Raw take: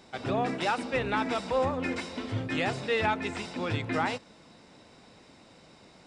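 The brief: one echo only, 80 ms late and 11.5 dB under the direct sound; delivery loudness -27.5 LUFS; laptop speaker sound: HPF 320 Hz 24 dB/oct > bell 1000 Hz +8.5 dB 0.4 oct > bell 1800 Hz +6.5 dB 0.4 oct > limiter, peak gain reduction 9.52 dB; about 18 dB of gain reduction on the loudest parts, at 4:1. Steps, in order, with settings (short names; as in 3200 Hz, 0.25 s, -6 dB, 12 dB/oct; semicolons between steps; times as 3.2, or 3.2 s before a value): compressor 4:1, threshold -46 dBFS; HPF 320 Hz 24 dB/oct; bell 1000 Hz +8.5 dB 0.4 oct; bell 1800 Hz +6.5 dB 0.4 oct; echo 80 ms -11.5 dB; gain +21.5 dB; limiter -17.5 dBFS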